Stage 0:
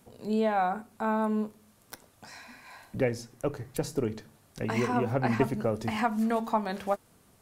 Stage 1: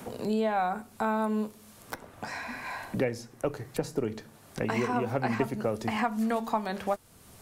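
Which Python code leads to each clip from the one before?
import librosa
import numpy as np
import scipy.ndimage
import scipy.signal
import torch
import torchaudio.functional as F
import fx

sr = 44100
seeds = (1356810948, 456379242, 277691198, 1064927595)

y = fx.low_shelf(x, sr, hz=220.0, db=-4.0)
y = fx.band_squash(y, sr, depth_pct=70)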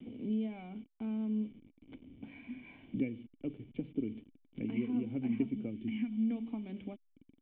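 y = fx.delta_hold(x, sr, step_db=-42.0)
y = fx.formant_cascade(y, sr, vowel='i')
y = fx.spec_box(y, sr, start_s=5.71, length_s=0.42, low_hz=390.0, high_hz=1400.0, gain_db=-10)
y = F.gain(torch.from_numpy(y), 2.0).numpy()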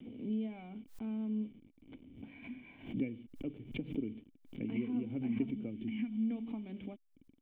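y = fx.pre_swell(x, sr, db_per_s=130.0)
y = F.gain(torch.from_numpy(y), -2.0).numpy()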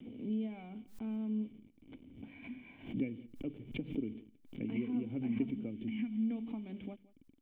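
y = x + 10.0 ** (-20.5 / 20.0) * np.pad(x, (int(171 * sr / 1000.0), 0))[:len(x)]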